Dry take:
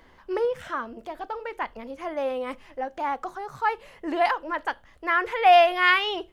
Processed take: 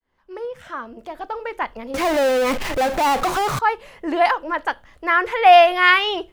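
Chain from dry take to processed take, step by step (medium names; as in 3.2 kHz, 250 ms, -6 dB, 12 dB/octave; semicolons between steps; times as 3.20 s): fade-in on the opening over 1.48 s; 1.94–3.59 s: power-law waveshaper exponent 0.35; trim +5.5 dB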